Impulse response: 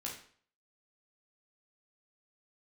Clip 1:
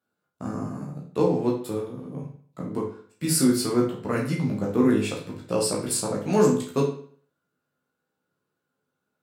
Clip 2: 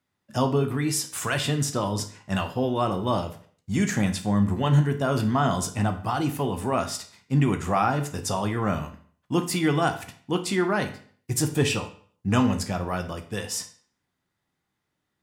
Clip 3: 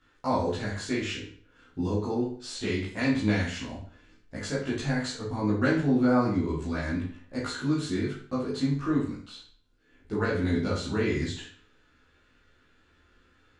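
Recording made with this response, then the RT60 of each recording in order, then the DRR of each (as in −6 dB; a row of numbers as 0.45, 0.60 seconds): 1; 0.50, 0.50, 0.50 seconds; −3.5, 6.0, −8.5 decibels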